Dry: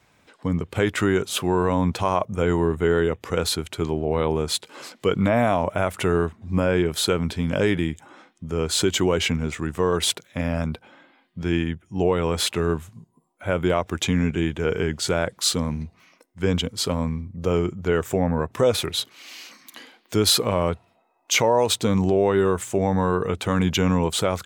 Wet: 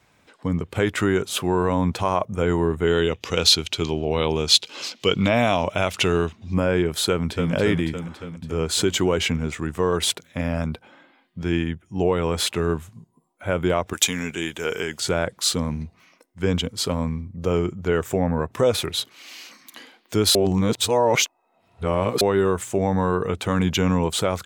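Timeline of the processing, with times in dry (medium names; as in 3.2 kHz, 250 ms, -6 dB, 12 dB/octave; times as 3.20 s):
2.87–6.54 s: high-order bell 4 kHz +11 dB
7.09–7.52 s: echo throw 280 ms, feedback 65%, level -5 dB
13.93–15.00 s: RIAA curve recording
20.35–22.21 s: reverse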